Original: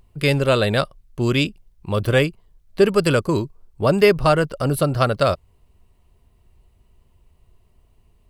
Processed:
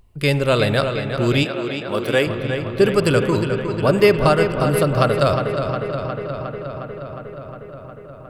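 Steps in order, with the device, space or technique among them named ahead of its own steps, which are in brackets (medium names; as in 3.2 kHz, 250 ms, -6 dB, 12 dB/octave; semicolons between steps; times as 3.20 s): dub delay into a spring reverb (filtered feedback delay 359 ms, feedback 77%, low-pass 4.9 kHz, level -7.5 dB; spring tank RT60 3.2 s, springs 42/48 ms, chirp 75 ms, DRR 11 dB); 1.43–2.27 s: high-pass 220 Hz 12 dB/octave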